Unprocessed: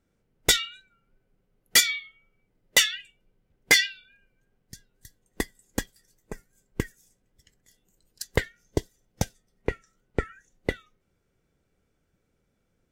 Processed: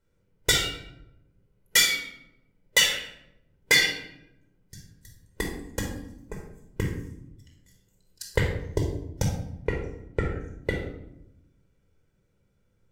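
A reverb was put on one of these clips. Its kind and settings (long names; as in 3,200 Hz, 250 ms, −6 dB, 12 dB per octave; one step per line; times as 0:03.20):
rectangular room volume 2,300 cubic metres, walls furnished, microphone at 4.8 metres
level −4.5 dB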